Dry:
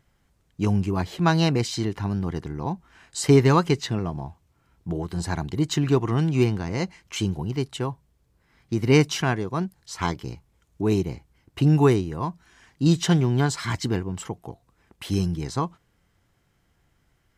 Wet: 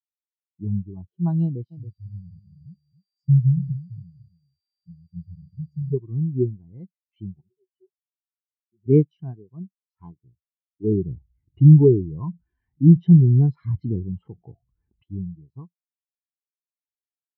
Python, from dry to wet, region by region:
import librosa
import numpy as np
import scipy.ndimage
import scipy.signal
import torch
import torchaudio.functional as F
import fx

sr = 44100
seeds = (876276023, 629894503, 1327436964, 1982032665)

y = fx.dmg_tone(x, sr, hz=4700.0, level_db=-36.0, at=(1.7, 5.92), fade=0.02)
y = fx.brickwall_bandstop(y, sr, low_hz=200.0, high_hz=4700.0, at=(1.7, 5.92), fade=0.02)
y = fx.echo_single(y, sr, ms=276, db=-6.5, at=(1.7, 5.92), fade=0.02)
y = fx.chain(y, sr, fx.low_shelf(hz=150.0, db=-10.0),
    fx.octave_resonator(note='F#', decay_s=0.13), at=(7.41, 8.86))
y = fx.chain(y, sr, fx.lowpass(hz=3600.0, slope=6),
    fx.env_flatten(amount_pct=50), at=(10.84, 15.04))
y = scipy.signal.sosfilt(scipy.signal.butter(2, 3600.0, 'lowpass', fs=sr, output='sos'), y)
y = fx.dynamic_eq(y, sr, hz=1500.0, q=1.3, threshold_db=-43.0, ratio=4.0, max_db=-6)
y = fx.spectral_expand(y, sr, expansion=2.5)
y = y * librosa.db_to_amplitude(5.0)